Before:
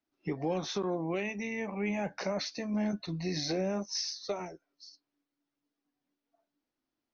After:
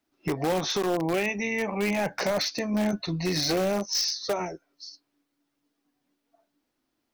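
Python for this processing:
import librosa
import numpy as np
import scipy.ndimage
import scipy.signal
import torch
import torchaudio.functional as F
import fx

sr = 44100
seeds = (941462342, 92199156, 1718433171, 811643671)

p1 = fx.dynamic_eq(x, sr, hz=210.0, q=1.1, threshold_db=-42.0, ratio=4.0, max_db=-4)
p2 = (np.mod(10.0 ** (28.0 / 20.0) * p1 + 1.0, 2.0) - 1.0) / 10.0 ** (28.0 / 20.0)
p3 = p1 + F.gain(torch.from_numpy(p2), -8.5).numpy()
y = F.gain(torch.from_numpy(p3), 6.5).numpy()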